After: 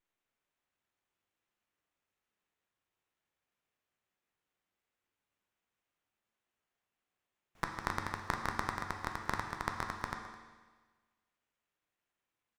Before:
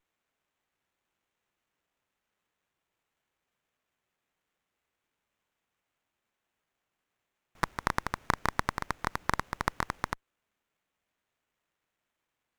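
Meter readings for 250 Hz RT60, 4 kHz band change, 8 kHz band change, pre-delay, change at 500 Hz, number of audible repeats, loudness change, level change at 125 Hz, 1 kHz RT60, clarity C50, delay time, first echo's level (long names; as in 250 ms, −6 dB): 1.4 s, −5.0 dB, −6.0 dB, 9 ms, −5.5 dB, 1, −5.0 dB, −5.0 dB, 1.4 s, 5.5 dB, 211 ms, −17.0 dB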